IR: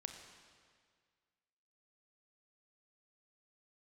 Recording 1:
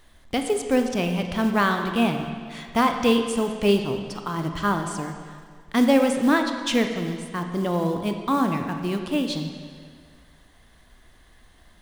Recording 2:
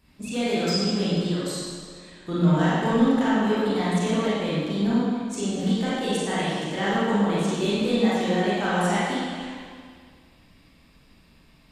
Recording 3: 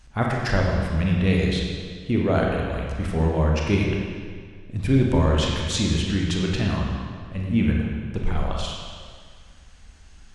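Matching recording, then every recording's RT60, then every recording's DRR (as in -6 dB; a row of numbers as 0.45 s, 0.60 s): 1; 1.9 s, 1.9 s, 1.9 s; 5.0 dB, -9.5 dB, -1.5 dB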